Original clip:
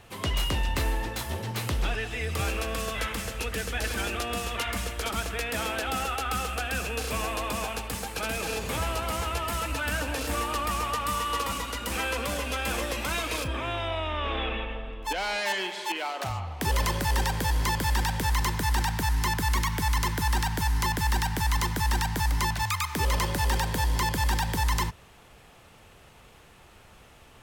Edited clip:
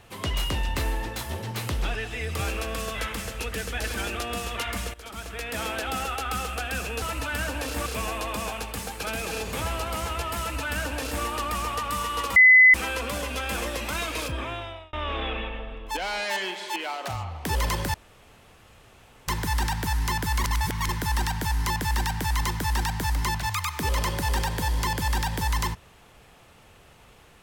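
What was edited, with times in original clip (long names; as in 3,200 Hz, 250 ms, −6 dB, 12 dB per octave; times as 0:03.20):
0:04.94–0:05.65: fade in, from −16 dB
0:09.55–0:10.39: duplicate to 0:07.02
0:11.52–0:11.90: beep over 2,020 Hz −10 dBFS
0:13.58–0:14.09: fade out
0:17.10–0:18.44: fill with room tone
0:19.60–0:20.05: reverse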